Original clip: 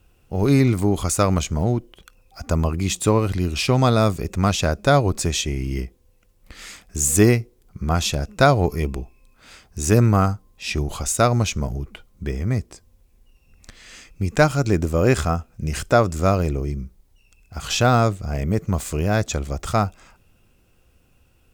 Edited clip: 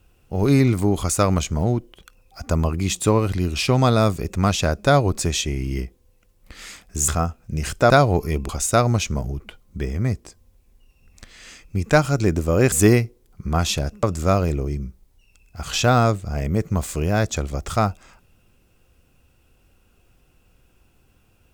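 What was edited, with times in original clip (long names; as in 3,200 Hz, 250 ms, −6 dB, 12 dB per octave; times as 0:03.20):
0:07.08–0:08.39: swap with 0:15.18–0:16.00
0:08.98–0:10.95: remove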